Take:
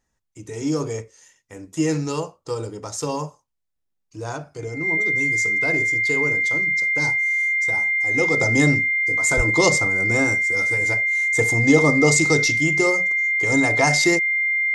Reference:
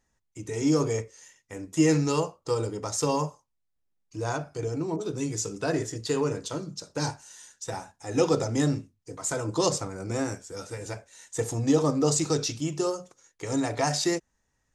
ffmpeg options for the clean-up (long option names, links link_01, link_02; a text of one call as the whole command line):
ffmpeg -i in.wav -filter_complex "[0:a]bandreject=frequency=2100:width=30,asplit=3[link_01][link_02][link_03];[link_01]afade=type=out:start_time=9.36:duration=0.02[link_04];[link_02]highpass=frequency=140:width=0.5412,highpass=frequency=140:width=1.3066,afade=type=in:start_time=9.36:duration=0.02,afade=type=out:start_time=9.48:duration=0.02[link_05];[link_03]afade=type=in:start_time=9.48:duration=0.02[link_06];[link_04][link_05][link_06]amix=inputs=3:normalize=0,asetnsamples=nb_out_samples=441:pad=0,asendcmd='8.41 volume volume -6.5dB',volume=0dB" out.wav